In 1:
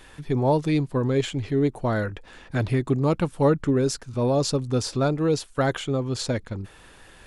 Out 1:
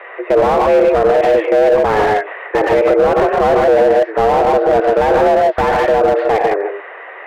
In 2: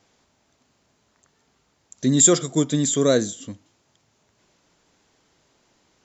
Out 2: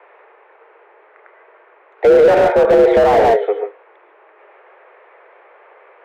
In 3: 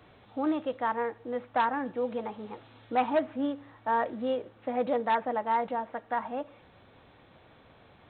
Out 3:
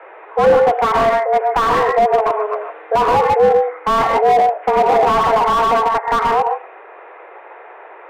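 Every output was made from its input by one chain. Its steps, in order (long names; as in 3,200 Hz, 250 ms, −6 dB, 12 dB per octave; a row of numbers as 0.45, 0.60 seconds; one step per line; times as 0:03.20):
single-sideband voice off tune +210 Hz 180–2,100 Hz
soft clipping −10.5 dBFS
reverb whose tail is shaped and stops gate 170 ms rising, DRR 4.5 dB
boost into a limiter +20 dB
slew-rate limiting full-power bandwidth 260 Hz
level −1 dB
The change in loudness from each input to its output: +11.5, +7.0, +16.5 LU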